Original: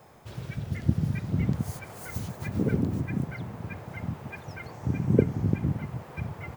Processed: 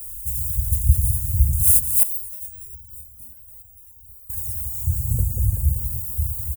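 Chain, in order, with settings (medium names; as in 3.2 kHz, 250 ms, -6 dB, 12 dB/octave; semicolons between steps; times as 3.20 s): inverse Chebyshev band-stop 150–5100 Hz, stop band 40 dB; treble shelf 2.2 kHz +8.5 dB; comb 5.5 ms, depth 58%; feedback echo behind a band-pass 191 ms, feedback 64%, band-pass 420 Hz, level -4.5 dB; loudness maximiser +25.5 dB; 2.03–4.30 s: resonator arpeggio 6.9 Hz 240–910 Hz; trim -1 dB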